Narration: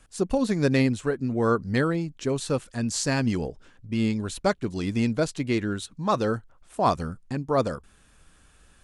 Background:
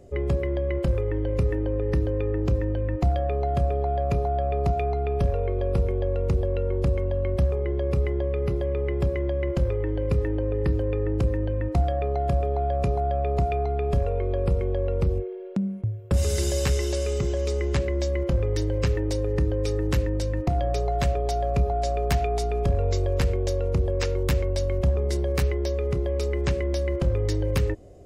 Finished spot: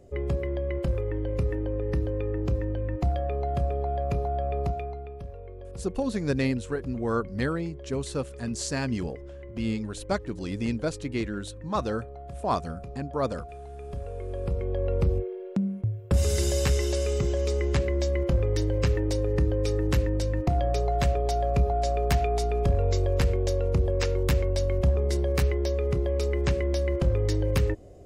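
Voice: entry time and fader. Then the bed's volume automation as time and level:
5.65 s, −4.5 dB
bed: 0:04.61 −3.5 dB
0:05.22 −16.5 dB
0:13.63 −16.5 dB
0:14.94 −0.5 dB

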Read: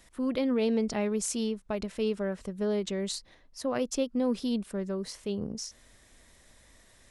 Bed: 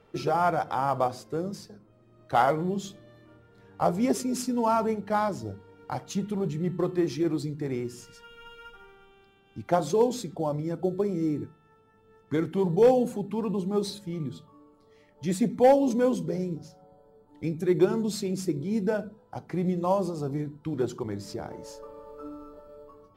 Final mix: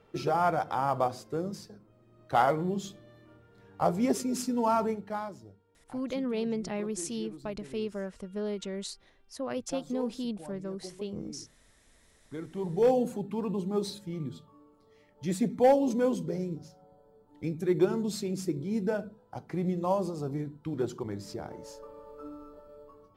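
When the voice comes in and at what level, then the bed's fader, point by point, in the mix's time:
5.75 s, −4.5 dB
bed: 0:04.83 −2 dB
0:05.56 −17.5 dB
0:12.10 −17.5 dB
0:12.95 −3 dB

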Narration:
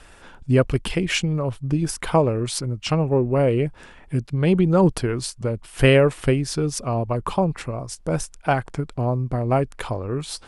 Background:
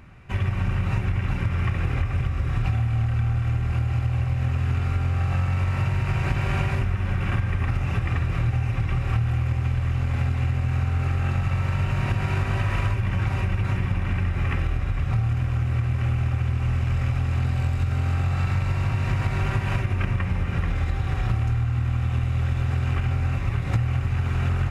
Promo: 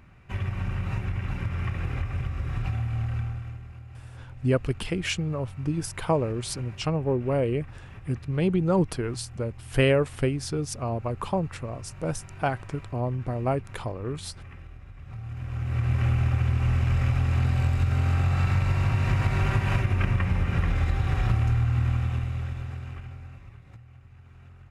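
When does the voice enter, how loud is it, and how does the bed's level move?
3.95 s, −6.0 dB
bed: 0:03.17 −5.5 dB
0:03.75 −20 dB
0:14.97 −20 dB
0:15.91 0 dB
0:21.87 0 dB
0:23.84 −26.5 dB

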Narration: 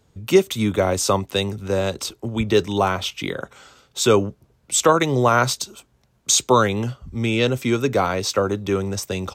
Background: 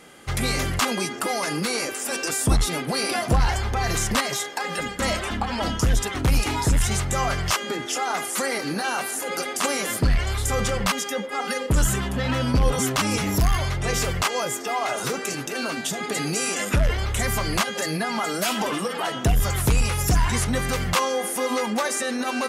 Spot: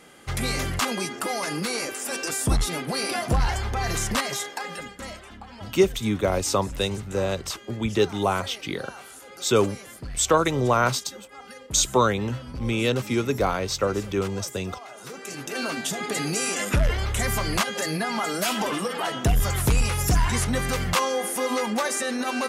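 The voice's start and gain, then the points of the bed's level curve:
5.45 s, −4.0 dB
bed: 0:04.51 −2.5 dB
0:05.24 −16.5 dB
0:14.93 −16.5 dB
0:15.57 −1 dB

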